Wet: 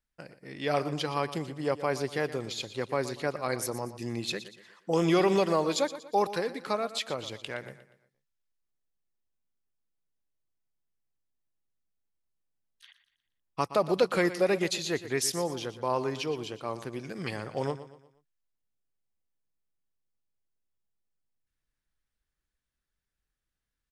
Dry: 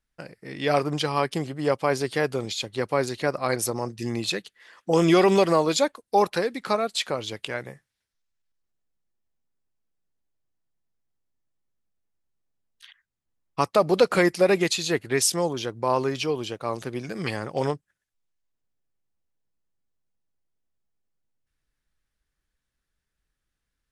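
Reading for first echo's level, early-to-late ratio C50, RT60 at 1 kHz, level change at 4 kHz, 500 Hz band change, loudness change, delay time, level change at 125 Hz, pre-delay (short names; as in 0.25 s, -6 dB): -14.0 dB, none, none, -6.0 dB, -6.0 dB, -6.0 dB, 0.119 s, -5.5 dB, none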